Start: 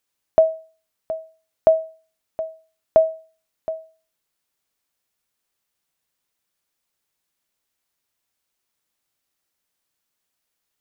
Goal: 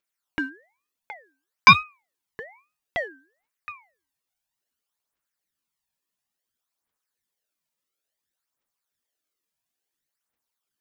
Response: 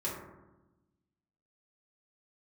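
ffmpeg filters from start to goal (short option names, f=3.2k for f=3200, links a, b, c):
-filter_complex "[0:a]aphaser=in_gain=1:out_gain=1:delay=1.4:decay=0.72:speed=0.58:type=triangular,asplit=2[a][b];[b]aeval=exprs='sgn(val(0))*max(abs(val(0))-0.0376,0)':c=same,volume=-3.5dB[c];[a][c]amix=inputs=2:normalize=0,aeval=exprs='2.37*(cos(1*acos(clip(val(0)/2.37,-1,1)))-cos(1*PI/2))+0.75*(cos(7*acos(clip(val(0)/2.37,-1,1)))-cos(7*PI/2))':c=same,aeval=exprs='val(0)*sin(2*PI*1400*n/s+1400*0.35/1.1*sin(2*PI*1.1*n/s))':c=same,volume=-8.5dB"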